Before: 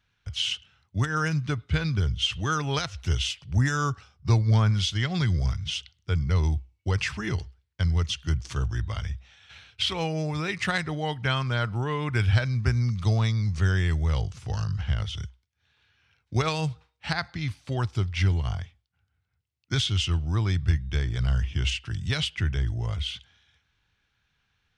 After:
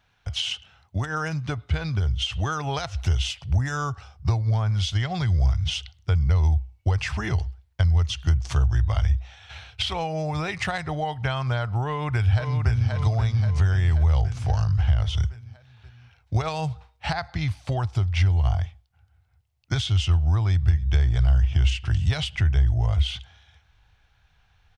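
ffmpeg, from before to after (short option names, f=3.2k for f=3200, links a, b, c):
-filter_complex "[0:a]asplit=2[a][b];[b]afade=t=in:st=11.85:d=0.01,afade=t=out:st=12.91:d=0.01,aecho=0:1:530|1060|1590|2120|2650|3180:0.501187|0.250594|0.125297|0.0626484|0.0313242|0.0156621[c];[a][c]amix=inputs=2:normalize=0,asettb=1/sr,asplit=3[d][e][f];[d]atrim=end=20.494[g];[e]atrim=start=20.49:end=22.36,asetpts=PTS-STARTPTS,afade=t=in:d=0.004:c=qsin,afade=t=out:st=1.866:d=0.004:c=qsin,aecho=1:1:277:0.0794,atrim=end_sample=82467[h];[f]atrim=start=22.356[i];[g][h]acrossfade=d=0.004:c1=hsin:c2=qsin[j];[j][i]acrossfade=d=0.004:c1=qsin:c2=hsin,equalizer=f=730:t=o:w=0.87:g=11,acompressor=threshold=-30dB:ratio=5,asubboost=boost=4.5:cutoff=100,volume=5dB"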